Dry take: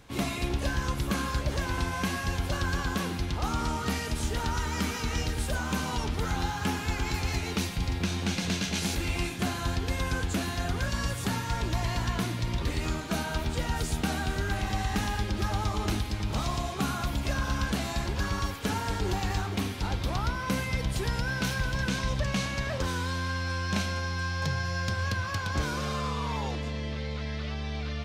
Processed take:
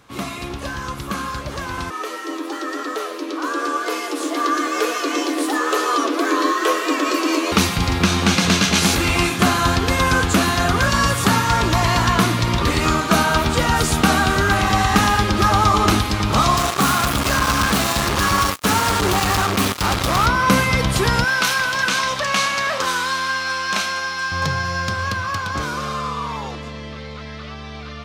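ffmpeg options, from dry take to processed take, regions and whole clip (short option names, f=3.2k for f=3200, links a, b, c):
-filter_complex "[0:a]asettb=1/sr,asplit=3[a][b][c];[a]atrim=end=1.904[d];[b]atrim=start=1.9:end=7.52,asetpts=PTS-STARTPTS,afade=t=in:d=0.004:c=qsin,afade=t=out:st=5.616:d=0.004:c=qsin,flanger=delay=3.8:depth=9.1:regen=61:speed=1:shape=triangular,afreqshift=240[e];[c]atrim=start=7.516[f];[d][e]acrossfade=d=0.004:c1=hsin:c2=qsin[g];[g][f]acrossfade=d=0.004:c1=qsin:c2=hsin,asettb=1/sr,asplit=3[h][i][j];[h]atrim=end=16.574[k];[i]atrim=start=16.57:end=20.26,asetpts=PTS-STARTPTS,afade=t=in:d=0.004:c=qsin,afade=t=out:st=3.686:d=0.004:c=qsin,highshelf=f=6.5k:g=4.5,volume=28.5dB,asoftclip=hard,volume=-28.5dB,acrusher=bits=4:mix=0:aa=0.5[l];[j]atrim=start=20.256[m];[k][l]acrossfade=d=0.004:c1=hsin:c2=qsin[n];[n][m]acrossfade=d=0.004:c1=qsin:c2=hsin,asettb=1/sr,asplit=3[o][p][q];[o]atrim=end=21.244[r];[p]atrim=start=21.24:end=24.32,asetpts=PTS-STARTPTS,afade=t=in:d=0.004:c=qsin,afade=t=out:st=3.076:d=0.004:c=qsin,highpass=f=900:p=1,asplit=2[s][t];[t]adelay=29,volume=-13.5dB[u];[s][u]amix=inputs=2:normalize=0,atrim=end_sample=135828[v];[q]atrim=start=24.316[w];[r][v]acrossfade=d=0.004:c1=hsin:c2=qsin[x];[x][w]acrossfade=d=0.004:c1=qsin:c2=hsin,highpass=f=130:p=1,equalizer=f=1.2k:w=3.7:g=8.5,dynaudnorm=f=270:g=31:m=12dB,volume=3dB"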